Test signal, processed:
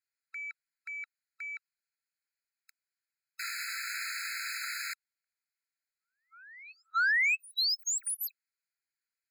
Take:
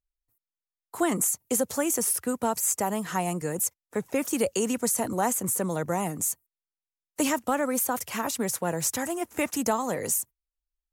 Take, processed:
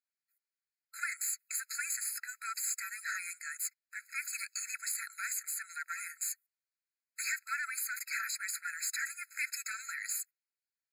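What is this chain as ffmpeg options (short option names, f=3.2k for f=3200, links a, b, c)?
-filter_complex "[0:a]asplit=2[a][b];[b]highpass=f=720:p=1,volume=17dB,asoftclip=type=tanh:threshold=-11.5dB[c];[a][c]amix=inputs=2:normalize=0,lowpass=f=4.4k:p=1,volume=-6dB,afftfilt=real='re*eq(mod(floor(b*sr/1024/1300),2),1)':imag='im*eq(mod(floor(b*sr/1024/1300),2),1)':win_size=1024:overlap=0.75,volume=-7dB"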